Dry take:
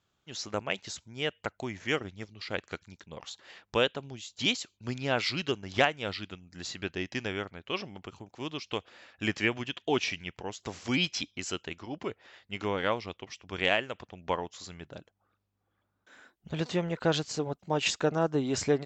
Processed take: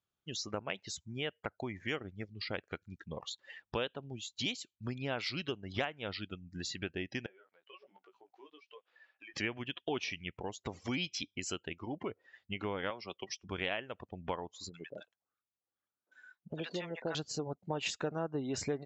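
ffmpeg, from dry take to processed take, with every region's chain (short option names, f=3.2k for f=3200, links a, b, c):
-filter_complex "[0:a]asettb=1/sr,asplit=3[a][b][c];[a]atrim=end=7.264[d];[b]atrim=start=7.26:end=9.34,asetpts=PTS-STARTPTS,afade=t=in:d=0.004:c=qsin,afade=t=out:st=2.076:d=0.004:c=qsin,flanger=delay=15.5:depth=2.3:speed=1.3,highpass=520,lowpass=4.1k,acompressor=threshold=-51dB:ratio=5:attack=3.2:release=140:knee=1:detection=peak[e];[c]atrim=start=9.336[f];[d][e]acrossfade=d=0.004:c1=hsin:c2=qsin[g];[g][f]acrossfade=d=0.004:c1=qsin:c2=hsin,asettb=1/sr,asplit=3[h][i][j];[h]atrim=end=12.904[k];[i]atrim=start=12.9:end=13.48,asetpts=PTS-STARTPTS,afade=t=in:d=0.004:c=qsin,afade=t=out:st=0.576:d=0.004:c=qsin,equalizer=f=5.1k:w=1.3:g=6,aecho=1:1:5.3:0.3,atrim=end_sample=25578,acrossover=split=270|740[l][m][n];[l]acompressor=threshold=-50dB:ratio=4[o];[m]acompressor=threshold=-38dB:ratio=4[p];[n]acompressor=threshold=-36dB:ratio=4[q];[o][p][q]amix=inputs=3:normalize=0[r];[j]atrim=start=13.476[s];[k][r]acrossfade=d=0.004:c1=hsin:c2=qsin[t];[t][s]acrossfade=d=0.004:c1=qsin:c2=hsin,asettb=1/sr,asplit=3[u][v][w];[u]atrim=end=14.694[x];[v]atrim=start=14.69:end=17.15,asetpts=PTS-STARTPTS,afade=t=in:d=0.004:c=qsin,afade=t=out:st=2.456:d=0.004:c=qsin,highpass=f=520:p=1,acrossover=split=840[y][z];[z]adelay=50[aa];[y][aa]amix=inputs=2:normalize=0,atrim=end_sample=108486[ab];[w]atrim=start=17.146[ac];[x][ab]acrossfade=d=0.004:c1=hsin:c2=qsin[ad];[ad][ac]acrossfade=d=0.004:c1=qsin:c2=hsin,afftdn=nr=22:nf=-45,acompressor=threshold=-48dB:ratio=2.5,volume=7dB"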